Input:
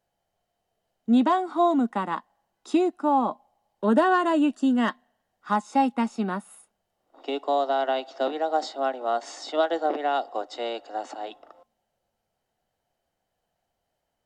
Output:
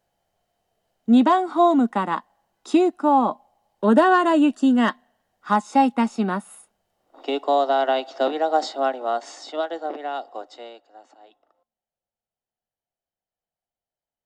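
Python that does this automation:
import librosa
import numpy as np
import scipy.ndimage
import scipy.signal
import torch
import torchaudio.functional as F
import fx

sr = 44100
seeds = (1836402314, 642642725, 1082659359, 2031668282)

y = fx.gain(x, sr, db=fx.line((8.8, 4.5), (9.74, -4.0), (10.48, -4.0), (10.88, -15.5)))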